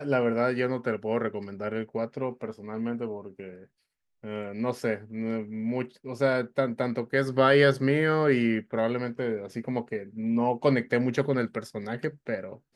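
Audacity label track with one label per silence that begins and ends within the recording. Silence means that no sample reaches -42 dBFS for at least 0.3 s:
3.630000	4.240000	silence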